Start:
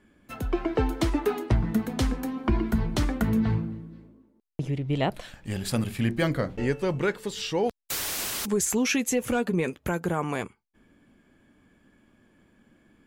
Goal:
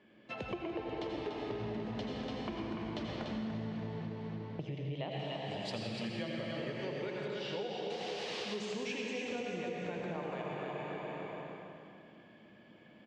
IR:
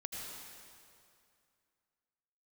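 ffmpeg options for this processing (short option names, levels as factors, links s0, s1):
-filter_complex "[0:a]highpass=170,equalizer=f=260:t=q:w=4:g=-7,equalizer=f=600:t=q:w=4:g=5,equalizer=f=1400:t=q:w=4:g=-7,equalizer=f=2900:t=q:w=4:g=4,lowpass=f=4700:w=0.5412,lowpass=f=4700:w=1.3066,aecho=1:1:291|582|873|1164:0.562|0.197|0.0689|0.0241[s0];[1:a]atrim=start_sample=2205[s1];[s0][s1]afir=irnorm=-1:irlink=0,acompressor=threshold=0.00891:ratio=6,asettb=1/sr,asplit=3[s2][s3][s4];[s2]atrim=end=5.114[s5];[s3]atrim=start=5.11:end=7.28,asetpts=PTS-STARTPTS,afade=t=in:d=0.004:c=qsin,afade=t=out:st=2.166:d=0.004:c=qsin,aemphasis=mode=production:type=50fm[s6];[s4]atrim=start=7.276[s7];[s5][s6]acrossfade=d=0.004:c1=hsin:c2=qsin[s8];[s8][s7]acrossfade=d=0.004:c1=qsin:c2=hsin,volume=1.5"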